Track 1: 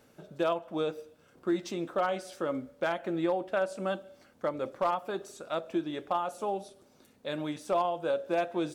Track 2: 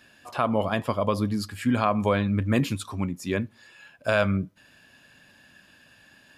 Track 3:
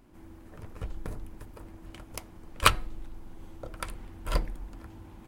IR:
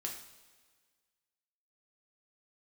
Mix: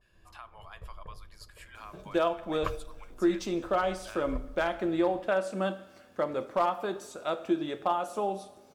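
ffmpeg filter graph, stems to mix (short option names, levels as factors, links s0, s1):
-filter_complex "[0:a]adelay=1750,volume=0.841,asplit=2[s0][s1];[s1]volume=0.631[s2];[1:a]agate=range=0.0224:threshold=0.00224:ratio=3:detection=peak,highpass=f=860:w=0.5412,highpass=f=860:w=1.3066,acompressor=threshold=0.0158:ratio=2,volume=0.211,asplit=2[s3][s4];[s4]volume=0.178[s5];[2:a]lowpass=1300,aecho=1:1:1.8:0.84,volume=0.211[s6];[3:a]atrim=start_sample=2205[s7];[s2][s5]amix=inputs=2:normalize=0[s8];[s8][s7]afir=irnorm=-1:irlink=0[s9];[s0][s3][s6][s9]amix=inputs=4:normalize=0"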